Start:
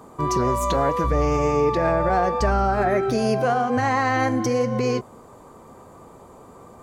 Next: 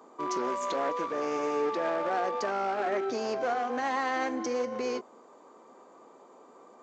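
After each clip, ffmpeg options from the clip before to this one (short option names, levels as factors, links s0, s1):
-af "aresample=16000,aeval=exprs='clip(val(0),-1,0.1)':c=same,aresample=44100,highpass=f=260:w=0.5412,highpass=f=260:w=1.3066,volume=0.422"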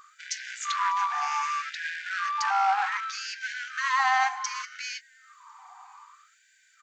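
-filter_complex "[0:a]asplit=2[s0][s1];[s1]adelay=1050,volume=0.0501,highshelf=f=4000:g=-23.6[s2];[s0][s2]amix=inputs=2:normalize=0,afftfilt=real='re*gte(b*sr/1024,700*pow(1500/700,0.5+0.5*sin(2*PI*0.65*pts/sr)))':imag='im*gte(b*sr/1024,700*pow(1500/700,0.5+0.5*sin(2*PI*0.65*pts/sr)))':win_size=1024:overlap=0.75,volume=2.66"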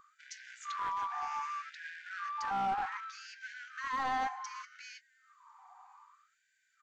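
-filter_complex "[0:a]acrossover=split=2000[s0][s1];[s0]asoftclip=type=hard:threshold=0.0708[s2];[s2][s1]amix=inputs=2:normalize=0,tiltshelf=f=930:g=8.5,volume=0.422"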